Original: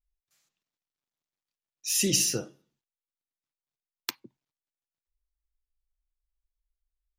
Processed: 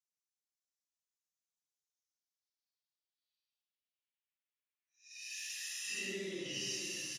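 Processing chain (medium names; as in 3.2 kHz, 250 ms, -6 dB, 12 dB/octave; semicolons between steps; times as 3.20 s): band-pass sweep 6.5 kHz -> 1.2 kHz, 1.21–2.07 s; Paulstretch 5.1×, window 0.10 s, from 0.84 s; echo from a far wall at 82 m, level -8 dB; trim +2.5 dB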